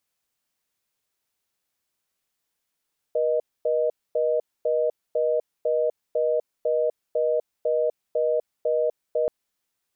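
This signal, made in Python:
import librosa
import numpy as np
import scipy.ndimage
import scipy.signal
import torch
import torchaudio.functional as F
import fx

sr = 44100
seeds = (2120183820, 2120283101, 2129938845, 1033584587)

y = fx.call_progress(sr, length_s=6.13, kind='reorder tone', level_db=-22.5)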